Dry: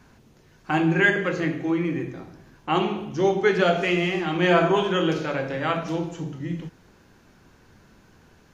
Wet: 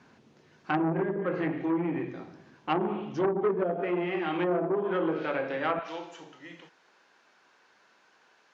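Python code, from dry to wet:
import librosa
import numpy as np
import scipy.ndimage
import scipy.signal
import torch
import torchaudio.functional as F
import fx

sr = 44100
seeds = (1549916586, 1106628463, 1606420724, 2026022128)

y = fx.bandpass_edges(x, sr, low_hz=fx.steps((0.0, 170.0), (3.56, 270.0), (5.79, 690.0)), high_hz=5200.0)
y = fx.env_lowpass_down(y, sr, base_hz=450.0, full_db=-17.0)
y = fx.transformer_sat(y, sr, knee_hz=950.0)
y = F.gain(torch.from_numpy(y), -2.0).numpy()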